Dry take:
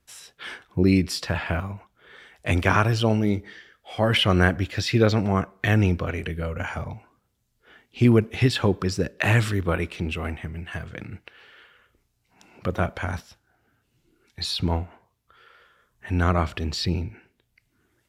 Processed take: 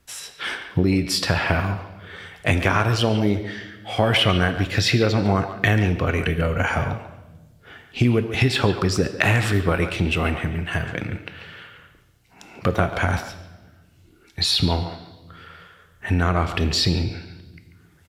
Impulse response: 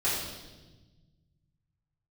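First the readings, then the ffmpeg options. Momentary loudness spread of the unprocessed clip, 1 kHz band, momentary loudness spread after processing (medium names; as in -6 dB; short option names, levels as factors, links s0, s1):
17 LU, +3.5 dB, 14 LU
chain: -filter_complex "[0:a]acompressor=threshold=0.0631:ratio=6,asplit=2[s0][s1];[s1]adelay=140,highpass=300,lowpass=3400,asoftclip=type=hard:threshold=0.0944,volume=0.316[s2];[s0][s2]amix=inputs=2:normalize=0,asplit=2[s3][s4];[1:a]atrim=start_sample=2205,lowshelf=f=240:g=-11[s5];[s4][s5]afir=irnorm=-1:irlink=0,volume=0.126[s6];[s3][s6]amix=inputs=2:normalize=0,volume=2.51"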